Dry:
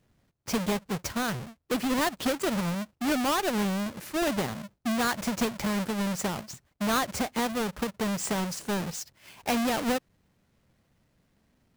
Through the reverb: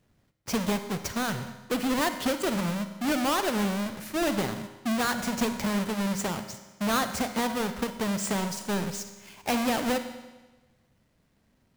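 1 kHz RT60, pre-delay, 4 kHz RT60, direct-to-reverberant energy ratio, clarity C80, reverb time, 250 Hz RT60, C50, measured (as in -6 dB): 1.2 s, 35 ms, 1.1 s, 8.5 dB, 11.5 dB, 1.2 s, 1.2 s, 10.0 dB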